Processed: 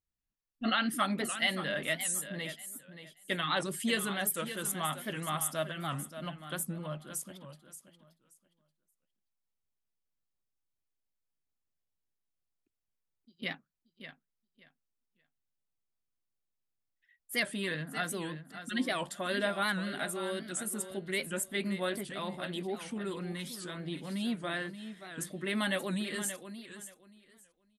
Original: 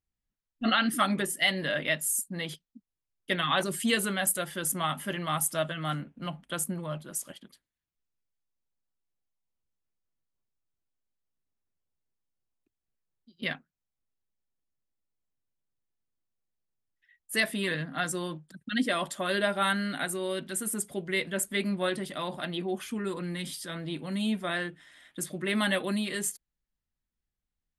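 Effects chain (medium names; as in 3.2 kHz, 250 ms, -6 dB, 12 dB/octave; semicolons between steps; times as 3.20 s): on a send: feedback delay 578 ms, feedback 20%, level -11 dB; on the sum: warped record 78 rpm, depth 160 cents; trim -4.5 dB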